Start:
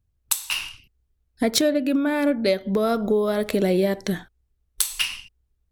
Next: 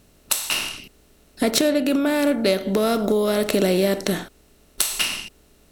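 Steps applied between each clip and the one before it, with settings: per-bin compression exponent 0.6; gain -1 dB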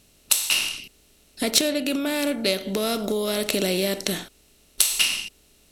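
band shelf 5400 Hz +8 dB 2.8 oct; gain -5.5 dB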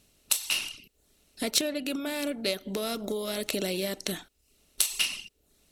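reverb removal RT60 0.5 s; gain -6 dB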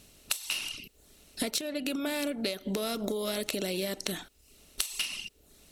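compressor 12:1, threshold -36 dBFS, peak gain reduction 18 dB; gain +7.5 dB

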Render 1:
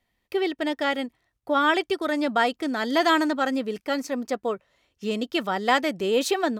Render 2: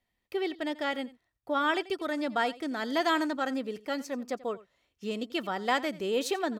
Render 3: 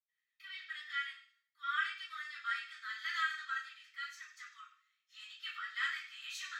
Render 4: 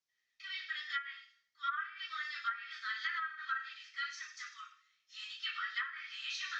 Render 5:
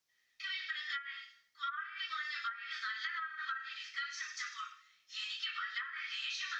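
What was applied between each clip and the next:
echo 87 ms -19 dB; gain -6.5 dB
steep high-pass 1200 Hz 96 dB/oct; reverb RT60 0.45 s, pre-delay 77 ms; gain +12.5 dB
resonant high shelf 7900 Hz -13 dB, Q 3; treble ducked by the level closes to 920 Hz, closed at -32 dBFS; gain +3.5 dB
compressor 6:1, threshold -44 dBFS, peak gain reduction 13 dB; gain +7 dB

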